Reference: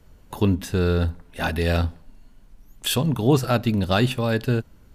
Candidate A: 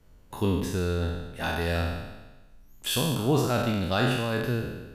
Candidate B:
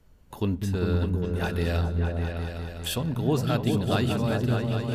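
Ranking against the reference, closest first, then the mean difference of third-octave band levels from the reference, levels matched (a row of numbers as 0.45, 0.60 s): B, A; 5.0, 6.5 dB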